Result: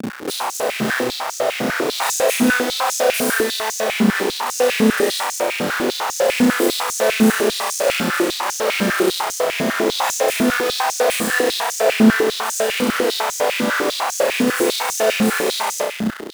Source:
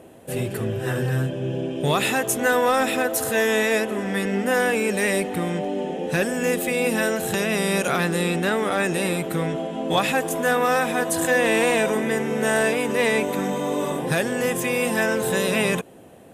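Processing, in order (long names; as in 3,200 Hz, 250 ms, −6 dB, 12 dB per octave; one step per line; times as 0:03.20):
parametric band 2,700 Hz −11.5 dB 0.59 octaves
comparator with hysteresis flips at −40 dBFS
on a send: flutter between parallel walls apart 5.5 metres, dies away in 1 s
on the sum: high-pass on a step sequencer 10 Hz 210–6,300 Hz
level −2 dB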